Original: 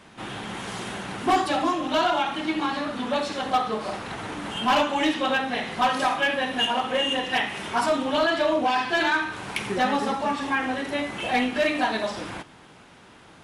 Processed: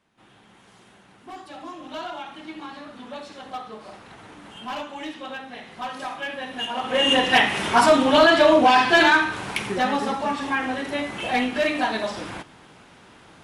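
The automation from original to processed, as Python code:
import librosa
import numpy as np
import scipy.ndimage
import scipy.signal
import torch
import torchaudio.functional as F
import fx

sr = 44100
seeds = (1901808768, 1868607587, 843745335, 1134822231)

y = fx.gain(x, sr, db=fx.line((1.29, -19.5), (1.86, -11.0), (5.68, -11.0), (6.71, -5.0), (7.12, 7.5), (9.0, 7.5), (9.74, 0.5)))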